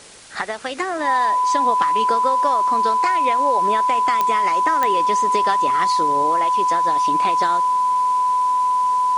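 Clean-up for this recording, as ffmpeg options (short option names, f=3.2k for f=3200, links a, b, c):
-af "adeclick=t=4,bandreject=f=1k:w=30,afwtdn=0.0089"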